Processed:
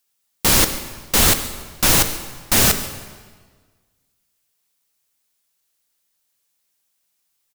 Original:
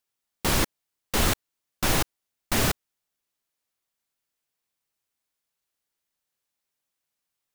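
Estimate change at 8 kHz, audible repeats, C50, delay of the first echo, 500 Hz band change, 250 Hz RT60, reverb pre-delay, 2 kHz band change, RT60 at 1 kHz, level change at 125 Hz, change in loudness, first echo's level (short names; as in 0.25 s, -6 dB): +12.5 dB, 1, 9.5 dB, 0.141 s, +5.5 dB, 1.6 s, 3 ms, +7.0 dB, 1.5 s, +5.0 dB, +10.0 dB, -20.0 dB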